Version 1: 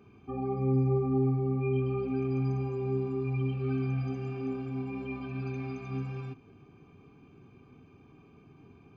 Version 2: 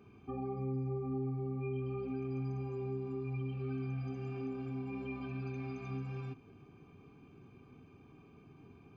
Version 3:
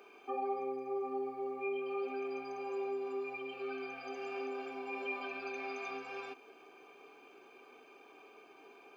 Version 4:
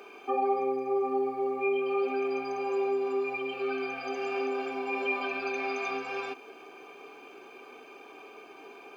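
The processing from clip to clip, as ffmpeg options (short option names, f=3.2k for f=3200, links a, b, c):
-af "acompressor=threshold=-36dB:ratio=2.5,volume=-2dB"
-af "highpass=f=460:w=0.5412,highpass=f=460:w=1.3066,equalizer=f=1.1k:t=o:w=0.21:g=-6.5,volume=10dB"
-af "volume=9dB" -ar 48000 -c:a libvorbis -b:a 192k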